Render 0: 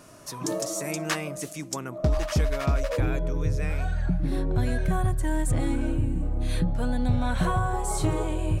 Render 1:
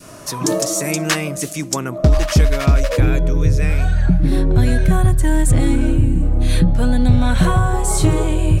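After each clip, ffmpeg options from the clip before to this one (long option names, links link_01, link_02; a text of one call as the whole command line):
ffmpeg -i in.wav -af "acontrast=89,adynamicequalizer=threshold=0.0158:dfrequency=840:dqfactor=0.75:tfrequency=840:tqfactor=0.75:attack=5:release=100:ratio=0.375:range=3:mode=cutabove:tftype=bell,volume=4.5dB" out.wav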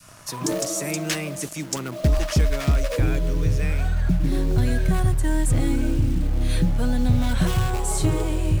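ffmpeg -i in.wav -filter_complex "[0:a]acrossover=split=200|720|1600[link_01][link_02][link_03][link_04];[link_02]acrusher=bits=5:mix=0:aa=0.000001[link_05];[link_03]aeval=exprs='(mod(15.8*val(0)+1,2)-1)/15.8':channel_layout=same[link_06];[link_01][link_05][link_06][link_04]amix=inputs=4:normalize=0,volume=-6.5dB" out.wav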